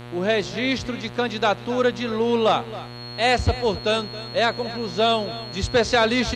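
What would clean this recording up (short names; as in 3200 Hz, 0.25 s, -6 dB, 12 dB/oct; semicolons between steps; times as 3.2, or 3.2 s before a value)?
de-hum 120.6 Hz, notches 37; notch 4300 Hz, Q 30; expander -27 dBFS, range -21 dB; inverse comb 0.271 s -16 dB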